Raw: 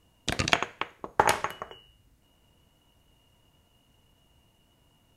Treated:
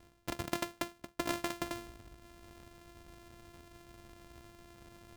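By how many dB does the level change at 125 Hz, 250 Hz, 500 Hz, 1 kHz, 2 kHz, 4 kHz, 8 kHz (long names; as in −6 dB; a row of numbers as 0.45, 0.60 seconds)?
−9.0, −1.0, −8.0, −13.5, −12.5, −11.5, −9.0 decibels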